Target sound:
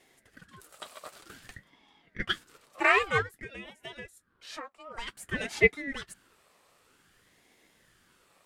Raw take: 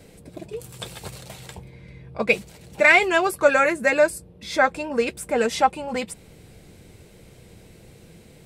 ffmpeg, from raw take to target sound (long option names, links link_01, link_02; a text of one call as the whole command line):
ffmpeg -i in.wav -filter_complex "[0:a]highpass=frequency=910:width_type=q:width=4.9,asettb=1/sr,asplit=3[link_01][link_02][link_03];[link_01]atrim=end=3.224[link_04];[link_02]atrim=start=3.22:end=4.97,asetpts=PTS-STARTPTS,afade=type=in:duration=0.004:curve=qsin,afade=type=out:start_time=1.746:duration=0.004:curve=qsin,acompressor=threshold=-29dB:ratio=12[link_05];[link_03]atrim=start=4.966[link_06];[link_04][link_05]acrossfade=duration=0.004:curve1=hsin:curve2=qsin[link_07];[link_07][link_06]acrossfade=duration=0.004:curve1=qsin:curve2=hsin,aeval=exprs='val(0)*sin(2*PI*750*n/s+750*0.65/0.53*sin(2*PI*0.53*n/s))':channel_layout=same,volume=-8dB" out.wav